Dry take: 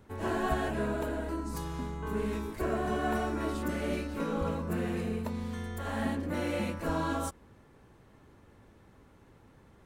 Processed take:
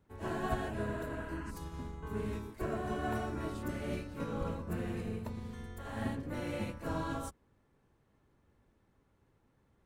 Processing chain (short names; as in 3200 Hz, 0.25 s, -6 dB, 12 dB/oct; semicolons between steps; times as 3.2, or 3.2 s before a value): octaver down 1 oct, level -3 dB; spectral repair 0.86–1.48, 770–3300 Hz before; upward expander 1.5:1, over -46 dBFS; gain -3.5 dB